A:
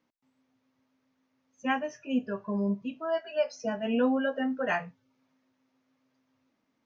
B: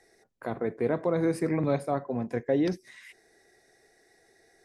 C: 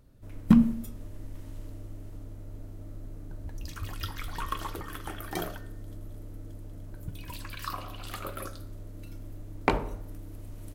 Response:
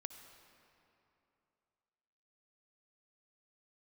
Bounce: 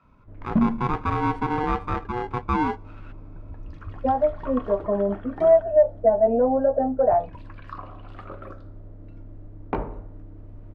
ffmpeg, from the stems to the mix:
-filter_complex "[0:a]equalizer=frequency=150:width=1.2:gain=-13.5,acompressor=threshold=-32dB:ratio=3,lowpass=frequency=690:width_type=q:width=3.6,adelay=2400,volume=2.5dB[link_01];[1:a]aeval=exprs='val(0)*sgn(sin(2*PI*610*n/s))':channel_layout=same,volume=-4dB,asplit=2[link_02][link_03];[link_03]volume=-19dB[link_04];[2:a]asoftclip=type=tanh:threshold=-12dB,adelay=50,volume=-6.5dB[link_05];[3:a]atrim=start_sample=2205[link_06];[link_04][link_06]afir=irnorm=-1:irlink=0[link_07];[link_01][link_02][link_05][link_07]amix=inputs=4:normalize=0,lowpass=1400,acontrast=75"

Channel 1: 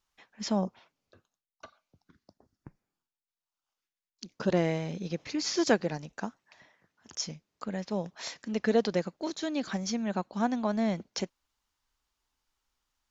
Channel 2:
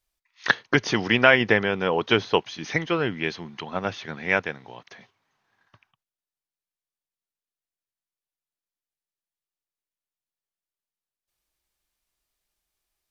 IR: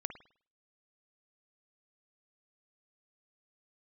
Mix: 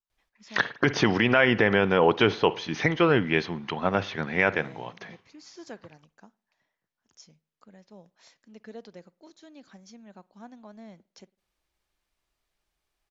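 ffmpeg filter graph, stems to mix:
-filter_complex "[0:a]volume=-19dB,asplit=2[link_01][link_02];[link_02]volume=-13.5dB[link_03];[1:a]lowpass=frequency=2800:poles=1,adelay=100,volume=2.5dB,asplit=2[link_04][link_05];[link_05]volume=-9.5dB[link_06];[2:a]atrim=start_sample=2205[link_07];[link_03][link_06]amix=inputs=2:normalize=0[link_08];[link_08][link_07]afir=irnorm=-1:irlink=0[link_09];[link_01][link_04][link_09]amix=inputs=3:normalize=0,alimiter=limit=-8.5dB:level=0:latency=1:release=55"

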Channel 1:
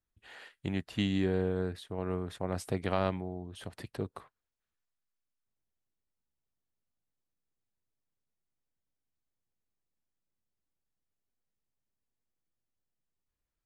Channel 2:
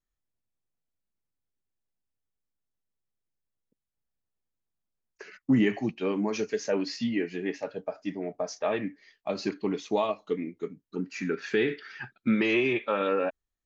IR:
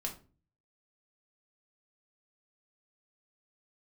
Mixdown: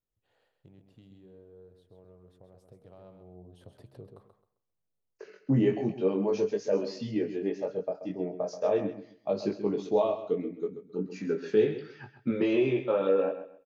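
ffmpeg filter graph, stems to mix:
-filter_complex "[0:a]bandreject=frequency=67.6:width_type=h:width=4,bandreject=frequency=135.2:width_type=h:width=4,bandreject=frequency=202.8:width_type=h:width=4,bandreject=frequency=270.4:width_type=h:width=4,bandreject=frequency=338:width_type=h:width=4,bandreject=frequency=405.6:width_type=h:width=4,bandreject=frequency=473.2:width_type=h:width=4,bandreject=frequency=540.8:width_type=h:width=4,bandreject=frequency=608.4:width_type=h:width=4,bandreject=frequency=676:width_type=h:width=4,bandreject=frequency=743.6:width_type=h:width=4,bandreject=frequency=811.2:width_type=h:width=4,bandreject=frequency=878.8:width_type=h:width=4,bandreject=frequency=946.4:width_type=h:width=4,bandreject=frequency=1014:width_type=h:width=4,bandreject=frequency=1081.6:width_type=h:width=4,bandreject=frequency=1149.2:width_type=h:width=4,bandreject=frequency=1216.8:width_type=h:width=4,bandreject=frequency=1284.4:width_type=h:width=4,bandreject=frequency=1352:width_type=h:width=4,acompressor=threshold=-36dB:ratio=3,asoftclip=type=tanh:threshold=-23.5dB,volume=-13.5dB,afade=type=in:start_time=2.76:duration=0.71:silence=0.375837,asplit=2[link_01][link_02];[link_02]volume=-7.5dB[link_03];[1:a]flanger=delay=19:depth=2.8:speed=0.43,volume=-2.5dB,asplit=2[link_04][link_05];[link_05]volume=-11.5dB[link_06];[link_03][link_06]amix=inputs=2:normalize=0,aecho=0:1:132|264|396|528:1|0.24|0.0576|0.0138[link_07];[link_01][link_04][link_07]amix=inputs=3:normalize=0,equalizer=frequency=125:width_type=o:width=1:gain=9,equalizer=frequency=500:width_type=o:width=1:gain=10,equalizer=frequency=2000:width_type=o:width=1:gain=-7,equalizer=frequency=8000:width_type=o:width=1:gain=-4"

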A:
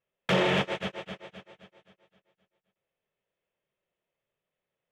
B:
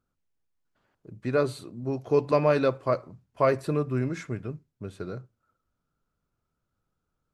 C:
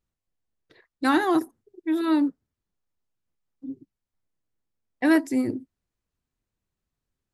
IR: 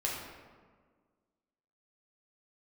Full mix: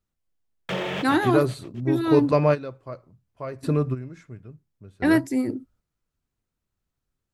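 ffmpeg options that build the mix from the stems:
-filter_complex "[0:a]aeval=exprs='sgn(val(0))*max(abs(val(0))-0.00473,0)':channel_layout=same,adelay=400,volume=-3.5dB[link_01];[1:a]lowshelf=frequency=140:gain=10.5,volume=1.5dB[link_02];[2:a]volume=0dB,asplit=2[link_03][link_04];[link_04]apad=whole_len=323628[link_05];[link_02][link_05]sidechaingate=range=-14dB:threshold=-58dB:ratio=16:detection=peak[link_06];[link_01][link_06][link_03]amix=inputs=3:normalize=0"

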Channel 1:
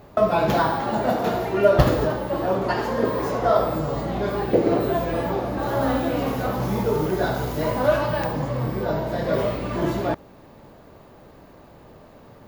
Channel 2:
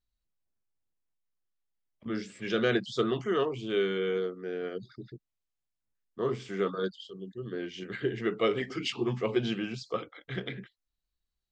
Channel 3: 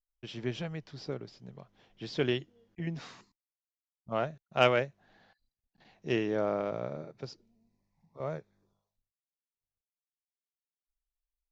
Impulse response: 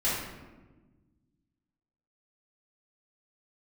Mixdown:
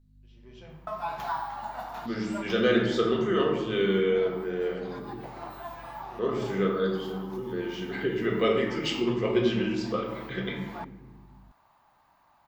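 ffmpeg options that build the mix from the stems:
-filter_complex "[0:a]lowshelf=frequency=640:width_type=q:width=3:gain=-11,adelay=700,volume=-14dB[link_01];[1:a]aeval=exprs='val(0)+0.000891*(sin(2*PI*50*n/s)+sin(2*PI*2*50*n/s)/2+sin(2*PI*3*50*n/s)/3+sin(2*PI*4*50*n/s)/4+sin(2*PI*5*50*n/s)/5)':channel_layout=same,volume=-2.5dB,asplit=3[link_02][link_03][link_04];[link_03]volume=-6.5dB[link_05];[2:a]asoftclip=type=tanh:threshold=-25dB,aeval=exprs='val(0)*pow(10,-26*if(lt(mod(-1.4*n/s,1),2*abs(-1.4)/1000),1-mod(-1.4*n/s,1)/(2*abs(-1.4)/1000),(mod(-1.4*n/s,1)-2*abs(-1.4)/1000)/(1-2*abs(-1.4)/1000))/20)':channel_layout=same,volume=-13dB,asplit=2[link_06][link_07];[link_07]volume=-5.5dB[link_08];[link_04]apad=whole_len=581200[link_09];[link_01][link_09]sidechaincompress=threshold=-52dB:ratio=3:attack=49:release=160[link_10];[3:a]atrim=start_sample=2205[link_11];[link_05][link_08]amix=inputs=2:normalize=0[link_12];[link_12][link_11]afir=irnorm=-1:irlink=0[link_13];[link_10][link_02][link_06][link_13]amix=inputs=4:normalize=0"

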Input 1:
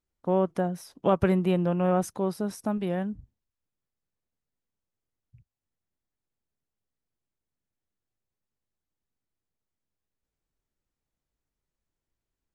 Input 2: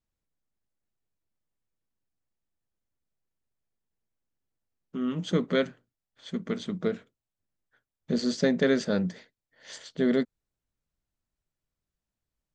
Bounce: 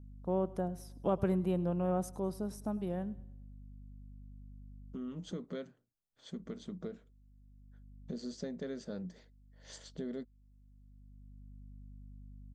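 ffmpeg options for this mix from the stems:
ffmpeg -i stem1.wav -i stem2.wav -filter_complex "[0:a]aeval=exprs='val(0)+0.00794*(sin(2*PI*50*n/s)+sin(2*PI*2*50*n/s)/2+sin(2*PI*3*50*n/s)/3+sin(2*PI*4*50*n/s)/4+sin(2*PI*5*50*n/s)/5)':channel_layout=same,volume=-7.5dB,asplit=3[link_01][link_02][link_03];[link_01]atrim=end=5.31,asetpts=PTS-STARTPTS,afade=type=out:start_time=5.306:duration=0.004:curve=hsin[link_04];[link_02]atrim=start=5.31:end=6.33,asetpts=PTS-STARTPTS,volume=0[link_05];[link_03]atrim=start=6.33,asetpts=PTS-STARTPTS,afade=type=in:duration=0.004:curve=hsin[link_06];[link_04][link_05][link_06]concat=n=3:v=0:a=1,asplit=2[link_07][link_08];[link_08]volume=-20.5dB[link_09];[1:a]acompressor=threshold=-37dB:ratio=3,volume=-4dB,asplit=2[link_10][link_11];[link_11]apad=whole_len=553229[link_12];[link_07][link_12]sidechaincompress=threshold=-51dB:ratio=8:attack=16:release=1220[link_13];[link_09]aecho=0:1:103|206|309|412|515|618:1|0.42|0.176|0.0741|0.0311|0.0131[link_14];[link_13][link_10][link_14]amix=inputs=3:normalize=0,equalizer=frequency=2200:width=0.73:gain=-8" out.wav

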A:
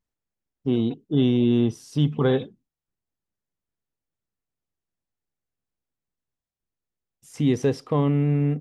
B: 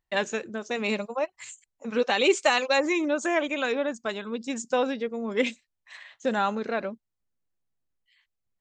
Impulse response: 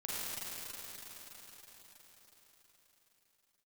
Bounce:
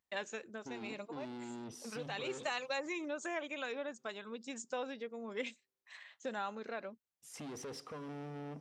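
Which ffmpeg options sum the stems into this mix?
-filter_complex "[0:a]highpass=frequency=190:poles=1,alimiter=limit=-20.5dB:level=0:latency=1,asoftclip=type=tanh:threshold=-32.5dB,volume=-5dB,asplit=3[link_01][link_02][link_03];[link_02]volume=-22.5dB[link_04];[1:a]volume=-8dB[link_05];[link_03]apad=whole_len=379432[link_06];[link_05][link_06]sidechaincompress=threshold=-46dB:ratio=8:attack=16:release=126[link_07];[2:a]atrim=start_sample=2205[link_08];[link_04][link_08]afir=irnorm=-1:irlink=0[link_09];[link_01][link_07][link_09]amix=inputs=3:normalize=0,highpass=48,lowshelf=frequency=300:gain=-7.5,acompressor=threshold=-44dB:ratio=1.5"

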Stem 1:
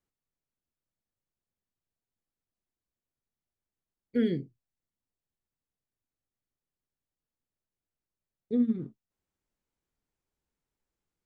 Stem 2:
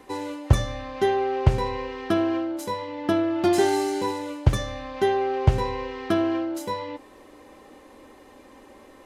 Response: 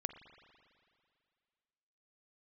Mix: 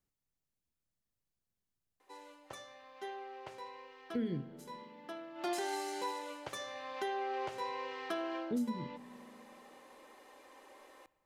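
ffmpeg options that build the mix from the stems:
-filter_complex "[0:a]bass=frequency=250:gain=5,treble=frequency=4000:gain=3,volume=-5dB,asplit=2[link_01][link_02];[link_02]volume=-6dB[link_03];[1:a]highpass=540,adelay=2000,volume=-8.5dB,afade=type=in:start_time=5.34:duration=0.2:silence=0.237137,asplit=2[link_04][link_05];[link_05]volume=-5.5dB[link_06];[2:a]atrim=start_sample=2205[link_07];[link_03][link_06]amix=inputs=2:normalize=0[link_08];[link_08][link_07]afir=irnorm=-1:irlink=0[link_09];[link_01][link_04][link_09]amix=inputs=3:normalize=0,alimiter=level_in=3.5dB:limit=-24dB:level=0:latency=1:release=439,volume=-3.5dB"

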